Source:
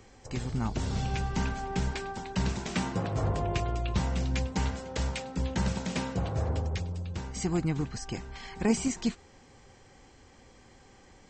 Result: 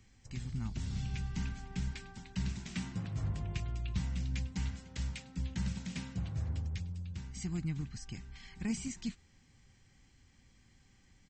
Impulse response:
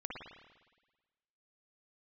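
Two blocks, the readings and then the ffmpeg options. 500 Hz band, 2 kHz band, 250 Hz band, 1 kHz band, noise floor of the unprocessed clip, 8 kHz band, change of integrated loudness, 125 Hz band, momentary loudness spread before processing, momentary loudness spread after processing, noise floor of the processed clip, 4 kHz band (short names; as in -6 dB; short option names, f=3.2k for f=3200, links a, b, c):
-20.0 dB, -10.0 dB, -8.5 dB, -18.5 dB, -56 dBFS, -8.5 dB, -7.5 dB, -5.5 dB, 7 LU, 6 LU, -65 dBFS, -8.5 dB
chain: -af "firequalizer=gain_entry='entry(170,0);entry(450,-17);entry(2000,-3)':delay=0.05:min_phase=1,volume=-5.5dB"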